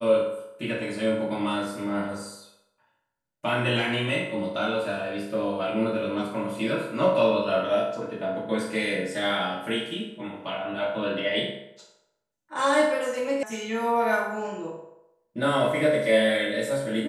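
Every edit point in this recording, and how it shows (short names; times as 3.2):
13.43 sound cut off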